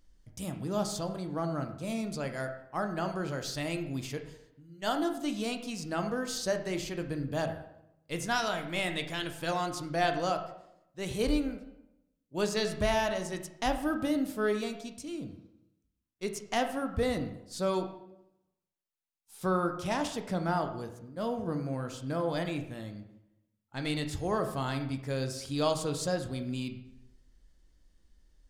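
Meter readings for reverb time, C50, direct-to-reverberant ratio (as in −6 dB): 0.80 s, 9.5 dB, 6.0 dB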